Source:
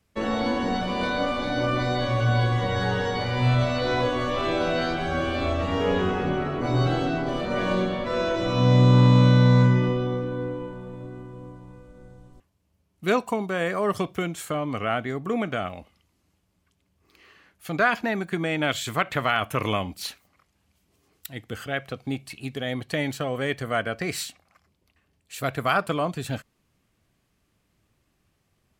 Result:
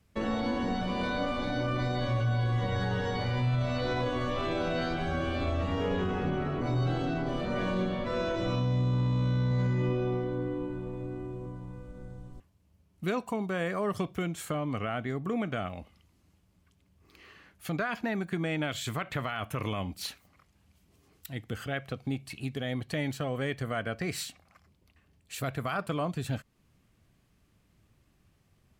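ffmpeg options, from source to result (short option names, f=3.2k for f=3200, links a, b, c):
-filter_complex "[0:a]asettb=1/sr,asplit=3[a][b][c];[a]atrim=end=9.434[d];[b]atrim=start=9.43:end=11.46,asetpts=PTS-STARTPTS,afade=t=in:d=0.004:c=qsin,afade=t=out:st=2.026:d=0.004:c=qsin,aecho=1:1:78|156|234|312|390|468|546|624:0.447|0.264|0.155|0.0917|0.0541|0.0319|0.0188|0.0111,atrim=end_sample=89523[e];[c]atrim=start=11.456[f];[d][e]acrossfade=d=0.004:c1=hsin:c2=qsin[g];[g][f]acrossfade=d=0.004:c1=qsin:c2=hsin,bass=f=250:g=5,treble=f=4k:g=-1,acompressor=threshold=-39dB:ratio=1.5,alimiter=limit=-21.5dB:level=0:latency=1:release=18"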